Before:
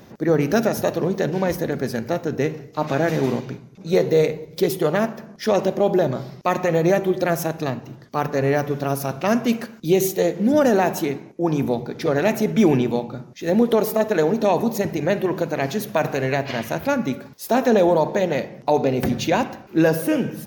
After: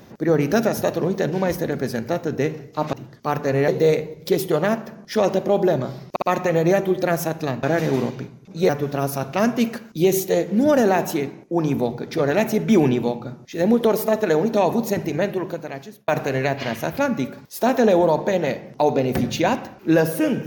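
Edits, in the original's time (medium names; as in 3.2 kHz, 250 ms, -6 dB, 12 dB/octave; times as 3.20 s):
2.93–3.99 s: swap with 7.82–8.57 s
6.41 s: stutter 0.06 s, 3 plays
14.95–15.96 s: fade out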